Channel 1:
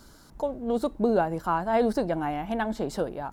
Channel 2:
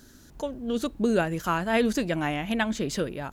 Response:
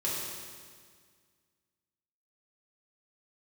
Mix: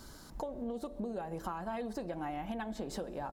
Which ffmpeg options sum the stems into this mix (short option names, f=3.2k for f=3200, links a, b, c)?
-filter_complex "[0:a]bandreject=f=1.4k:w=22,acompressor=threshold=-27dB:ratio=6,bandreject=f=64.65:t=h:w=4,bandreject=f=129.3:t=h:w=4,bandreject=f=193.95:t=h:w=4,bandreject=f=258.6:t=h:w=4,bandreject=f=323.25:t=h:w=4,bandreject=f=387.9:t=h:w=4,bandreject=f=452.55:t=h:w=4,bandreject=f=517.2:t=h:w=4,bandreject=f=581.85:t=h:w=4,bandreject=f=646.5:t=h:w=4,bandreject=f=711.15:t=h:w=4,volume=0.5dB,asplit=2[a][b];[b]volume=-23dB[c];[1:a]aecho=1:1:1.6:0.65,adelay=3.6,volume=-16.5dB[d];[2:a]atrim=start_sample=2205[e];[c][e]afir=irnorm=-1:irlink=0[f];[a][d][f]amix=inputs=3:normalize=0,acompressor=threshold=-37dB:ratio=4"